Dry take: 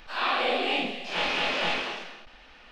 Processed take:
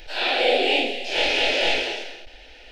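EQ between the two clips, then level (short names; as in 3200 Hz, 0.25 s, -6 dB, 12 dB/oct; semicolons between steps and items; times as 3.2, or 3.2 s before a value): fixed phaser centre 470 Hz, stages 4; +9.0 dB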